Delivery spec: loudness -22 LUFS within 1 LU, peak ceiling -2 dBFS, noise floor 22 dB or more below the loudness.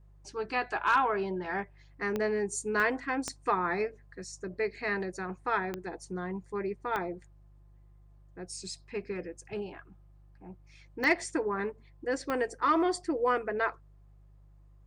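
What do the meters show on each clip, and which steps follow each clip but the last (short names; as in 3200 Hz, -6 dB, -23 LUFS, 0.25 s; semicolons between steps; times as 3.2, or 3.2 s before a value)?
clicks 7; hum 50 Hz; harmonics up to 150 Hz; hum level -54 dBFS; loudness -32.0 LUFS; peak -16.0 dBFS; loudness target -22.0 LUFS
-> de-click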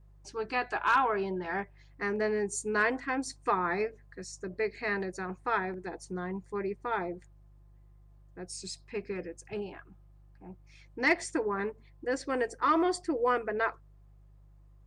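clicks 0; hum 50 Hz; harmonics up to 150 Hz; hum level -54 dBFS
-> de-hum 50 Hz, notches 3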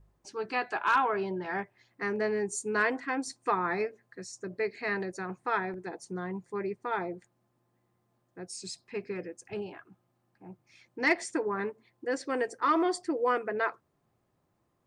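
hum none; loudness -32.0 LUFS; peak -16.0 dBFS; loudness target -22.0 LUFS
-> gain +10 dB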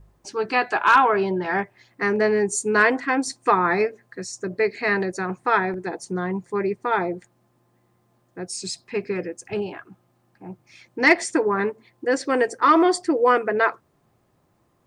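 loudness -22.0 LUFS; peak -6.0 dBFS; noise floor -65 dBFS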